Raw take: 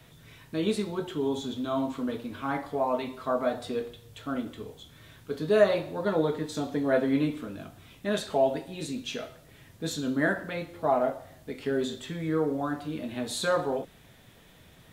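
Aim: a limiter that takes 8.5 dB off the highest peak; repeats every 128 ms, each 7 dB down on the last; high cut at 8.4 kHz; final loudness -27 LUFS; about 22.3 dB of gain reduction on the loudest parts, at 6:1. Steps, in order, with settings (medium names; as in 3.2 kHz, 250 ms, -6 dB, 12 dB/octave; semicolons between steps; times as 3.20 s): low-pass 8.4 kHz; compression 6:1, threshold -40 dBFS; peak limiter -35.5 dBFS; feedback delay 128 ms, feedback 45%, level -7 dB; trim +18 dB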